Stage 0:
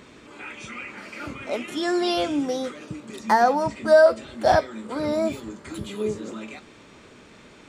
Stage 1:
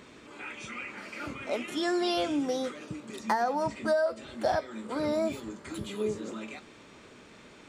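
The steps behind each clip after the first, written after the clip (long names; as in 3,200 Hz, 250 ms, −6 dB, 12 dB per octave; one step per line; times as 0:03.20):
low-shelf EQ 140 Hz −3.5 dB
downward compressor 6 to 1, threshold −21 dBFS, peak gain reduction 10.5 dB
level −3 dB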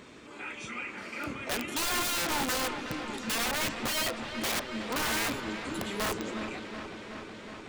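wrap-around overflow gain 27 dB
delay with a low-pass on its return 370 ms, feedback 77%, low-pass 3,500 Hz, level −9 dB
level +1 dB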